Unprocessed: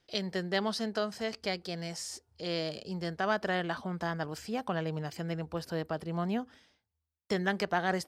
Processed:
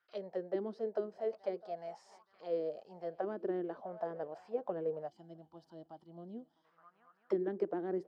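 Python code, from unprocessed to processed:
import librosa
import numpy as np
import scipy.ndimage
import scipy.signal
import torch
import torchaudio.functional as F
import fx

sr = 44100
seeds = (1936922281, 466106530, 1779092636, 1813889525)

y = fx.echo_swing(x, sr, ms=874, ratio=3, feedback_pct=39, wet_db=-23.0)
y = fx.spec_box(y, sr, start_s=5.08, length_s=1.57, low_hz=370.0, high_hz=2900.0, gain_db=-16)
y = fx.auto_wah(y, sr, base_hz=330.0, top_hz=1400.0, q=5.5, full_db=-27.0, direction='down')
y = y * librosa.db_to_amplitude(5.5)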